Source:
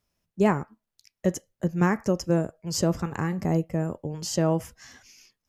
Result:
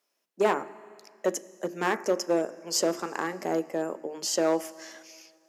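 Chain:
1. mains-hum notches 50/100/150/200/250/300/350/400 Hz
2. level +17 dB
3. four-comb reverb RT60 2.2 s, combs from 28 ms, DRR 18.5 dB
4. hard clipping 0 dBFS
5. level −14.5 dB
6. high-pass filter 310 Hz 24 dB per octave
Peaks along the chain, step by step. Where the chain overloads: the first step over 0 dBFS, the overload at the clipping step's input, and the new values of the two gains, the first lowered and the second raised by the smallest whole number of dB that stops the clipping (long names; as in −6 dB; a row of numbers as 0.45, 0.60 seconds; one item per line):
−8.5, +8.5, +8.5, 0.0, −14.5, −11.5 dBFS
step 2, 8.5 dB
step 2 +8 dB, step 5 −5.5 dB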